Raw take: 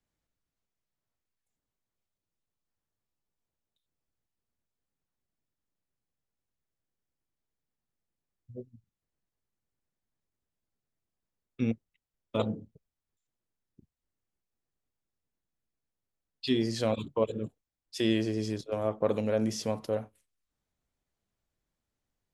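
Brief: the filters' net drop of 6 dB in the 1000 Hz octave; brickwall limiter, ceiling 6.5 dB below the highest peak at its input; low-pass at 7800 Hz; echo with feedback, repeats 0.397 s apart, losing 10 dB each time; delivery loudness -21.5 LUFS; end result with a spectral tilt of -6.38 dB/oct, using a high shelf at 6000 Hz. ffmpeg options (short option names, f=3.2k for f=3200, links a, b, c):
-af "lowpass=7.8k,equalizer=f=1k:t=o:g=-8,highshelf=f=6k:g=-9,alimiter=limit=-21.5dB:level=0:latency=1,aecho=1:1:397|794|1191|1588:0.316|0.101|0.0324|0.0104,volume=13.5dB"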